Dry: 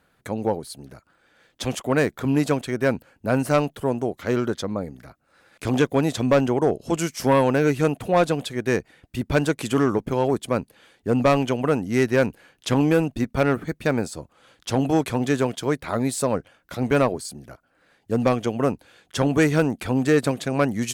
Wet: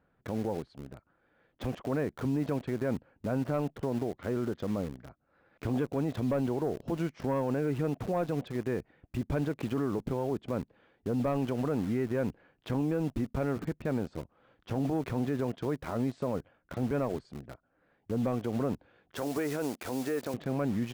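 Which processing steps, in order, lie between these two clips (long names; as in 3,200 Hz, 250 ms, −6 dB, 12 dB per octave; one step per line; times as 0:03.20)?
head-to-tape spacing loss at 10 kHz 45 dB
in parallel at −6.5 dB: bit reduction 6 bits
0:19.16–0:20.34: on the sum: bass and treble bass −15 dB, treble +10 dB
brickwall limiter −19 dBFS, peak gain reduction 11 dB
level −4 dB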